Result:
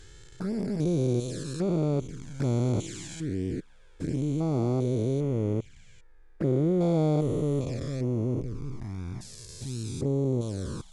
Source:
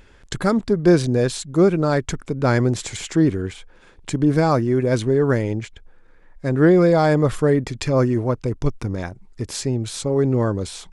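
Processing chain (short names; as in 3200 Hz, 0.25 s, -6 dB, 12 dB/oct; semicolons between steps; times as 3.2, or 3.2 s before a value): stepped spectrum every 0.4 s; envelope flanger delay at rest 2.8 ms, full sweep at -19 dBFS; tone controls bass +2 dB, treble +5 dB; gain -6.5 dB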